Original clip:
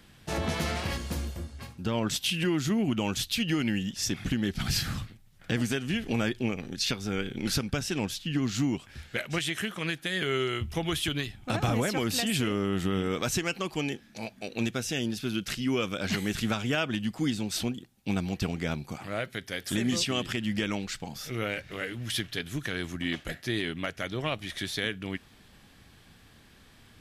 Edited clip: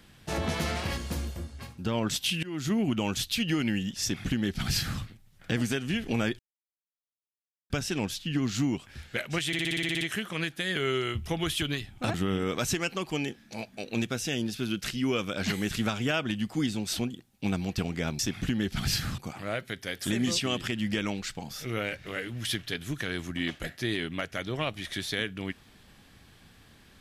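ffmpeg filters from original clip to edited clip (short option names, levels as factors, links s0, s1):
-filter_complex "[0:a]asplit=16[s0][s1][s2][s3][s4][s5][s6][s7][s8][s9][s10][s11][s12][s13][s14][s15];[s0]atrim=end=2.43,asetpts=PTS-STARTPTS,afade=t=out:st=2.426:d=0.004:c=hsin:silence=0.0749894[s16];[s1]atrim=start=2.43:end=6.39,asetpts=PTS-STARTPTS,afade=t=in:d=0.29:silence=0.0749894,afade=t=out:st=3.956:d=0.004:c=hsin[s17];[s2]atrim=start=6.39:end=7.7,asetpts=PTS-STARTPTS,volume=0[s18];[s3]atrim=start=7.7:end=9.532,asetpts=PTS-STARTPTS,afade=t=in:d=0.004:c=hsin[s19];[s4]atrim=start=9.468:end=9.532[s20];[s5]atrim=start=9.468:end=9.532[s21];[s6]atrim=start=9.468:end=9.532[s22];[s7]atrim=start=9.468:end=9.532[s23];[s8]atrim=start=9.468:end=9.532[s24];[s9]atrim=start=9.468:end=9.532[s25];[s10]atrim=start=9.468:end=9.532[s26];[s11]atrim=start=9.468:end=9.532[s27];[s12]atrim=start=9.468:end=11.602[s28];[s13]atrim=start=12.778:end=18.832[s29];[s14]atrim=start=4.018:end=5.012[s30];[s15]atrim=start=18.828[s31];[s16][s17][s18][s19]concat=n=4:v=0:a=1[s32];[s32][s20]acrossfade=d=0.004:c1=hsin:c2=hsin[s33];[s33][s21]acrossfade=d=0.004:c1=hsin:c2=hsin[s34];[s34][s22]acrossfade=d=0.004:c1=hsin:c2=hsin[s35];[s35][s23]acrossfade=d=0.004:c1=hsin:c2=hsin[s36];[s36][s24]acrossfade=d=0.004:c1=hsin:c2=hsin[s37];[s37][s25]acrossfade=d=0.004:c1=hsin:c2=hsin[s38];[s38][s26]acrossfade=d=0.004:c1=hsin:c2=hsin[s39];[s39][s27]acrossfade=d=0.004:c1=hsin:c2=hsin[s40];[s40][s28]acrossfade=d=0.004:c1=hsin:c2=hsin[s41];[s41][s29]acrossfade=d=0.004:c1=hsin:c2=hsin[s42];[s42][s30]acrossfade=d=0.004:c1=hsin:c2=hsin[s43];[s43][s31]acrossfade=d=0.004:c1=hsin:c2=hsin"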